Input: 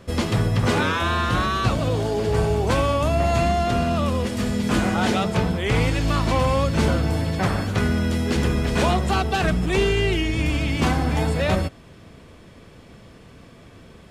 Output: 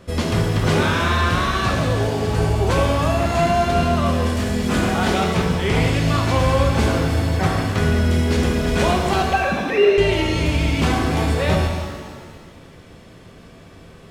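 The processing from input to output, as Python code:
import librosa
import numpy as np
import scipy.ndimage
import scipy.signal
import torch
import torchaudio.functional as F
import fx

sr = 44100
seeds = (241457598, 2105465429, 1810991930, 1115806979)

y = fx.sine_speech(x, sr, at=(9.3, 9.98))
y = fx.rev_shimmer(y, sr, seeds[0], rt60_s=1.6, semitones=7, shimmer_db=-8, drr_db=1.5)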